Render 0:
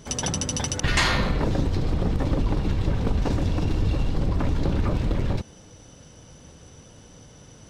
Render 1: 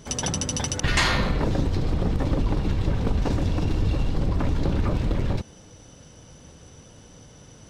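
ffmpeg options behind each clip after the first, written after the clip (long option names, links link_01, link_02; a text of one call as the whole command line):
ffmpeg -i in.wav -af anull out.wav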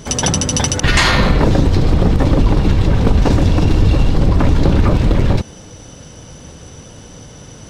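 ffmpeg -i in.wav -af "alimiter=level_in=12.5dB:limit=-1dB:release=50:level=0:latency=1,volume=-1dB" out.wav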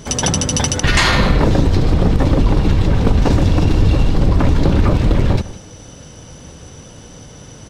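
ffmpeg -i in.wav -af "aecho=1:1:156:0.141,volume=-1dB" out.wav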